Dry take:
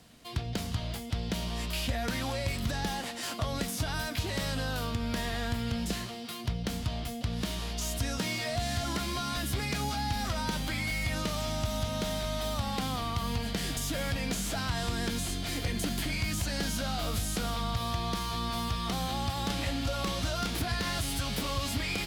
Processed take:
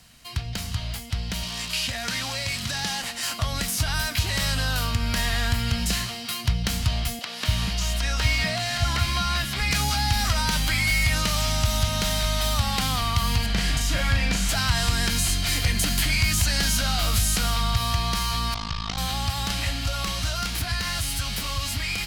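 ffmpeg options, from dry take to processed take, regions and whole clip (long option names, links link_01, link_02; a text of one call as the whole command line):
ffmpeg -i in.wav -filter_complex "[0:a]asettb=1/sr,asplit=3[link_01][link_02][link_03];[link_01]atrim=end=1.434[link_04];[link_02]atrim=start=1.43:end=3.02,asetpts=PTS-STARTPTS,afade=type=in:duration=0.004:curve=qsin,afade=type=out:start_time=1.586:duration=0.004:curve=qsin,acrusher=bits=8:dc=4:mix=0:aa=0.000001,highpass=120,lowpass=5500,aemphasis=mode=production:type=50fm[link_05];[link_03]atrim=start=3.016[link_06];[link_04][link_05]acrossfade=duration=0.004:curve1=hsin:curve2=qsin[link_07];[link_07][link_06]acrossfade=duration=0.004:curve1=qsin:curve2=hsin,asettb=1/sr,asplit=3[link_08][link_09][link_10];[link_08]atrim=end=7.194[link_11];[link_09]atrim=start=7.19:end=9.71,asetpts=PTS-STARTPTS,afade=type=in:duration=0.004:curve=qsin,afade=type=out:start_time=2.516:duration=0.004:curve=qsin,acrossover=split=4700[link_12][link_13];[link_13]acompressor=threshold=-49dB:ratio=4:attack=1:release=60[link_14];[link_12][link_14]amix=inputs=2:normalize=0,acrossover=split=300[link_15][link_16];[link_15]adelay=240[link_17];[link_17][link_16]amix=inputs=2:normalize=0,atrim=end_sample=111132[link_18];[link_10]atrim=start=9.706[link_19];[link_11][link_18]acrossfade=duration=0.004:curve1=hsin:curve2=qsin[link_20];[link_20][link_19]acrossfade=duration=0.004:curve1=qsin:curve2=hsin,asettb=1/sr,asplit=3[link_21][link_22][link_23];[link_21]atrim=end=13.464[link_24];[link_22]atrim=start=13.46:end=14.49,asetpts=PTS-STARTPTS,afade=type=in:duration=0.004:curve=qsin,afade=type=out:start_time=1.026:duration=0.004:curve=qsin,aemphasis=mode=reproduction:type=50kf,asplit=2[link_25][link_26];[link_26]adelay=37,volume=-3.5dB[link_27];[link_25][link_27]amix=inputs=2:normalize=0,atrim=end_sample=45423[link_28];[link_23]atrim=start=14.486[link_29];[link_24][link_28]acrossfade=duration=0.004:curve1=hsin:curve2=qsin[link_30];[link_30][link_29]acrossfade=duration=0.004:curve1=qsin:curve2=hsin,asettb=1/sr,asplit=3[link_31][link_32][link_33];[link_31]atrim=end=18.544[link_34];[link_32]atrim=start=18.54:end=18.98,asetpts=PTS-STARTPTS,afade=type=in:duration=0.004:curve=qsin,afade=type=out:start_time=0.436:duration=0.004:curve=qsin,lowpass=frequency=6300:width=0.5412,lowpass=frequency=6300:width=1.3066,tremolo=f=53:d=1[link_35];[link_33]atrim=start=18.976[link_36];[link_34][link_35]acrossfade=duration=0.004:curve1=hsin:curve2=qsin[link_37];[link_37][link_36]acrossfade=duration=0.004:curve1=qsin:curve2=hsin,equalizer=frequency=370:width_type=o:width=2.2:gain=-14.5,bandreject=frequency=3500:width=17,dynaudnorm=framelen=360:gausssize=21:maxgain=5dB,volume=7.5dB" out.wav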